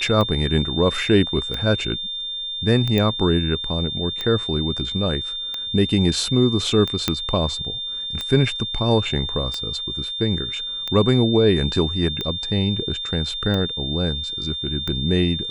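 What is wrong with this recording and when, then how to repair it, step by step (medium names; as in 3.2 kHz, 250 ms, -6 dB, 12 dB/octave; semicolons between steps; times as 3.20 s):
tick 45 rpm -13 dBFS
whine 3.6 kHz -26 dBFS
2.98 s: pop -9 dBFS
7.08 s: pop -4 dBFS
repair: de-click; band-stop 3.6 kHz, Q 30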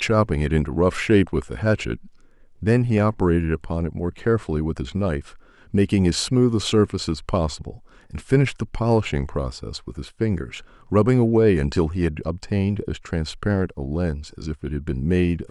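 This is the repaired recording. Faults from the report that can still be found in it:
nothing left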